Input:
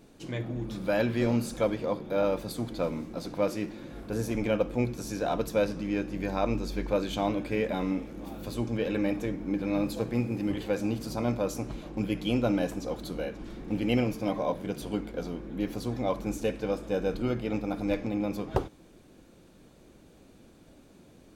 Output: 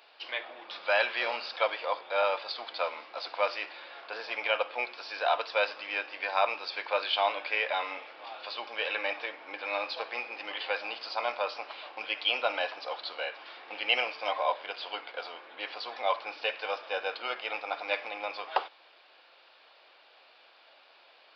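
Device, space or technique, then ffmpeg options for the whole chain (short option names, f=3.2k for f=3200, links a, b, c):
musical greeting card: -af "aresample=11025,aresample=44100,highpass=f=730:w=0.5412,highpass=f=730:w=1.3066,equalizer=f=2.8k:t=o:w=0.46:g=5,volume=7dB"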